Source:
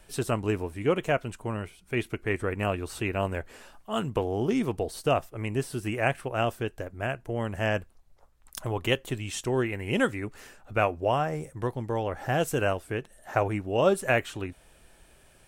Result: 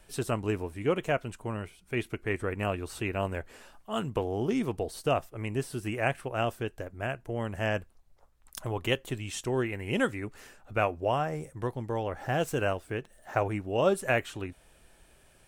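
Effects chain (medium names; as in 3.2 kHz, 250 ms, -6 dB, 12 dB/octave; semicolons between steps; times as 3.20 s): 12.12–13.48 s: median filter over 3 samples; trim -2.5 dB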